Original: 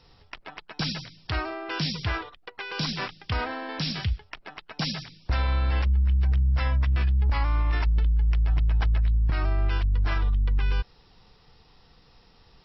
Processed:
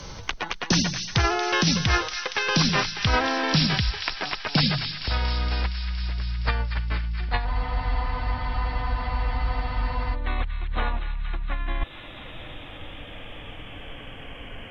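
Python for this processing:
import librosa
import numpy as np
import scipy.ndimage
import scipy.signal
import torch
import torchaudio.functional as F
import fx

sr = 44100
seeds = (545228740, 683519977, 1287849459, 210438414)

y = fx.speed_glide(x, sr, from_pct=114, to_pct=58)
y = fx.over_compress(y, sr, threshold_db=-27.0, ratio=-0.5)
y = fx.echo_wet_highpass(y, sr, ms=233, feedback_pct=70, hz=1700.0, wet_db=-9.5)
y = fx.spec_freeze(y, sr, seeds[0], at_s=7.48, hold_s=2.65)
y = fx.band_squash(y, sr, depth_pct=40)
y = y * 10.0 ** (4.5 / 20.0)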